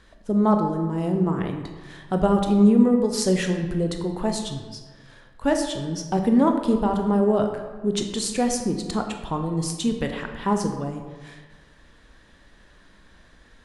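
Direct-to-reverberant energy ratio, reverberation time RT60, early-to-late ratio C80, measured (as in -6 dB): 4.0 dB, 1.4 s, 8.0 dB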